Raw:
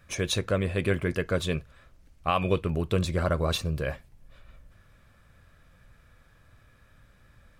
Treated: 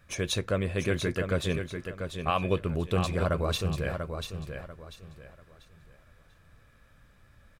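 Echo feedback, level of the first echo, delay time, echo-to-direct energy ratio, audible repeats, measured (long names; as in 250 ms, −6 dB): 29%, −7.0 dB, 691 ms, −6.5 dB, 3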